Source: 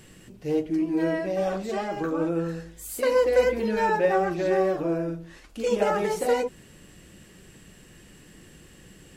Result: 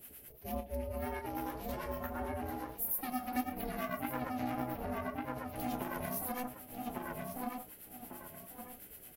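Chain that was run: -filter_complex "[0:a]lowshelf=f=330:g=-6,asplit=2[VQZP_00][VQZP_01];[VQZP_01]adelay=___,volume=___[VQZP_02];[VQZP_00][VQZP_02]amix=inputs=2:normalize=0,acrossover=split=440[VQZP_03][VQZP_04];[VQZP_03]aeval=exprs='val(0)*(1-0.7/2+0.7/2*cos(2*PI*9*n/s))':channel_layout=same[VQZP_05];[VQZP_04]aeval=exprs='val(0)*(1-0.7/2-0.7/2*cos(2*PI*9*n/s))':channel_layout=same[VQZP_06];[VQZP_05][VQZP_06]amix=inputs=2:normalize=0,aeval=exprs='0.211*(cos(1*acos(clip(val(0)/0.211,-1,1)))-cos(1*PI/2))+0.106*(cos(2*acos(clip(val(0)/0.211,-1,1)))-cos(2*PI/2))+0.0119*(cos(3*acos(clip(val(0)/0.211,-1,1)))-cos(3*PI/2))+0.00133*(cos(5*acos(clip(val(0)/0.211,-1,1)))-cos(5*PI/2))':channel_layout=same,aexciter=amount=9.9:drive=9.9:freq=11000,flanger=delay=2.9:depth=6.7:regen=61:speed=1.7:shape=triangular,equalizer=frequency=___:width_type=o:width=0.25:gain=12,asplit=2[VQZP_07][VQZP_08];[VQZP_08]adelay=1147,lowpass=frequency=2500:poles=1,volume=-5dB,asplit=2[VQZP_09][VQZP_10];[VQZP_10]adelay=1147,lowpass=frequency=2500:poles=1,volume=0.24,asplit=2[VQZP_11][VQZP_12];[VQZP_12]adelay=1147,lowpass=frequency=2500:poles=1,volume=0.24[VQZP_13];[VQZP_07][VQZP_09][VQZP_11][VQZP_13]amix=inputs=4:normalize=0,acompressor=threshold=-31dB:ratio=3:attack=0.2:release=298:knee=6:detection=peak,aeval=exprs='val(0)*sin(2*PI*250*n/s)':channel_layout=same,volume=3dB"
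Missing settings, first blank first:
32, -11.5dB, 62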